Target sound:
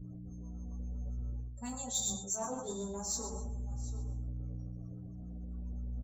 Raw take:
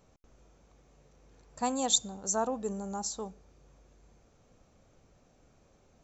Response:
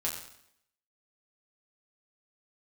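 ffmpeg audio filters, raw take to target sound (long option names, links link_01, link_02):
-filter_complex "[0:a]highshelf=frequency=5600:gain=7[link_01];[1:a]atrim=start_sample=2205[link_02];[link_01][link_02]afir=irnorm=-1:irlink=0,acrossover=split=920[link_03][link_04];[link_03]aeval=exprs='val(0)*(1-0.5/2+0.5/2*cos(2*PI*7.5*n/s))':channel_layout=same[link_05];[link_04]aeval=exprs='val(0)*(1-0.5/2-0.5/2*cos(2*PI*7.5*n/s))':channel_layout=same[link_06];[link_05][link_06]amix=inputs=2:normalize=0,aeval=exprs='val(0)+0.00447*(sin(2*PI*60*n/s)+sin(2*PI*2*60*n/s)/2+sin(2*PI*3*60*n/s)/3+sin(2*PI*4*60*n/s)/4+sin(2*PI*5*60*n/s)/5)':channel_layout=same,bass=frequency=250:gain=6,treble=frequency=4000:gain=-2,areverse,acompressor=threshold=-39dB:ratio=8,areverse,afftdn=noise_reduction=35:noise_floor=-60,aecho=1:1:732:0.141,asplit=2[link_07][link_08];[link_08]aeval=exprs='clip(val(0),-1,0.0119)':channel_layout=same,volume=-6.5dB[link_09];[link_07][link_09]amix=inputs=2:normalize=0,crystalizer=i=1:c=0,asplit=2[link_10][link_11];[link_11]adelay=7.4,afreqshift=-0.41[link_12];[link_10][link_12]amix=inputs=2:normalize=1,volume=2.5dB"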